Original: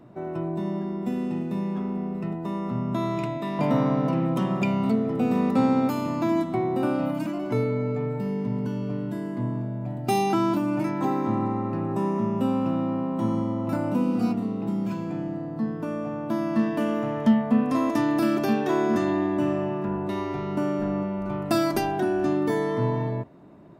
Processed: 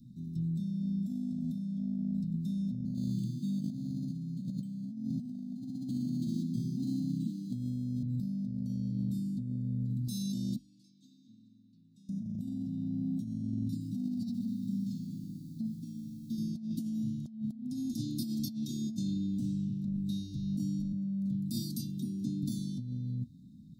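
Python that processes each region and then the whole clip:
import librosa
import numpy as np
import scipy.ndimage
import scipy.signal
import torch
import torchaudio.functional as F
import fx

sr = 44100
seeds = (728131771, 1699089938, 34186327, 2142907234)

y = fx.chain(x, sr, fx.highpass(hz=120.0, slope=24),
    fx.echo_banded(ms=97, feedback_pct=77, hz=670.0, wet_db=-16),
    fx.resample_linear(factor=8), at=(2.85, 8.03))
y = fx.chain(y, sr, fx.lowpass(hz=2600.0, slope=12),
    fx.differentiator(), at=(10.56, 12.09))
y = fx.chain(y, sr, fx.lowpass(hz=3900.0, slope=6),
    fx.low_shelf(hz=440.0, db=-7.5),
    fx.echo_crushed(ms=125, feedback_pct=80, bits=9, wet_db=-14), at=(13.68, 16.38))
y = fx.chain(y, sr, fx.self_delay(depth_ms=0.086),
    fx.cheby1_bandstop(low_hz=540.0, high_hz=2200.0, order=3), at=(19.39, 19.97))
y = fx.chain(y, sr, fx.highpass(hz=110.0, slope=24),
    fx.peak_eq(hz=5100.0, db=-5.5, octaves=1.6), at=(20.92, 22.43))
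y = scipy.signal.sosfilt(scipy.signal.cheby1(5, 1.0, [250.0, 3800.0], 'bandstop', fs=sr, output='sos'), y)
y = fx.hum_notches(y, sr, base_hz=50, count=3)
y = fx.over_compress(y, sr, threshold_db=-33.0, ratio=-1.0)
y = y * 10.0 ** (-2.0 / 20.0)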